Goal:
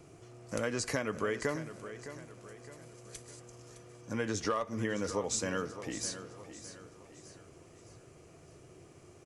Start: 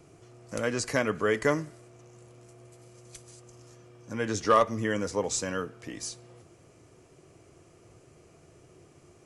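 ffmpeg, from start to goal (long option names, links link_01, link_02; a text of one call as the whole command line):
ffmpeg -i in.wav -af "acompressor=threshold=-29dB:ratio=10,aecho=1:1:612|1224|1836|2448:0.237|0.104|0.0459|0.0202" out.wav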